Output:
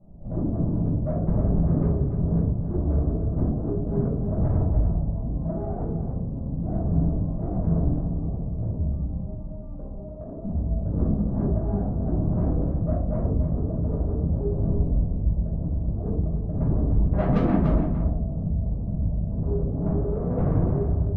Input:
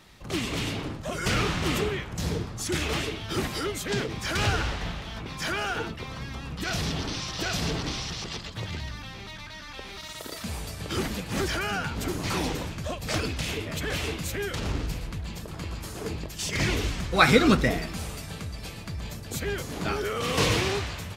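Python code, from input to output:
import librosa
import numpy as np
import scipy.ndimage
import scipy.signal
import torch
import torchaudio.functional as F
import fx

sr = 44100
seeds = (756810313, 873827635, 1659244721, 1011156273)

y = scipy.signal.sosfilt(scipy.signal.butter(6, 640.0, 'lowpass', fs=sr, output='sos'), x)
y = fx.peak_eq(y, sr, hz=390.0, db=-9.5, octaves=0.95)
y = fx.tube_stage(y, sr, drive_db=31.0, bias=0.3)
y = y + 10.0 ** (-8.5 / 20.0) * np.pad(y, (int(291 * sr / 1000.0), 0))[:len(y)]
y = fx.room_shoebox(y, sr, seeds[0], volume_m3=450.0, walls='furnished', distance_m=6.7)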